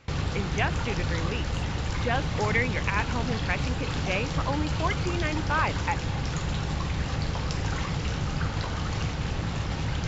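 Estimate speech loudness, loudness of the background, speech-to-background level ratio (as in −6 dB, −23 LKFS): −31.0 LKFS, −30.0 LKFS, −1.0 dB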